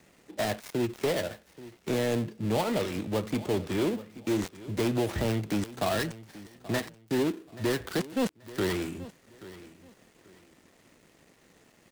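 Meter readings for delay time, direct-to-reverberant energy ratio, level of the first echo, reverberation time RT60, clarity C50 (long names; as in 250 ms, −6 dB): 831 ms, no reverb audible, −17.5 dB, no reverb audible, no reverb audible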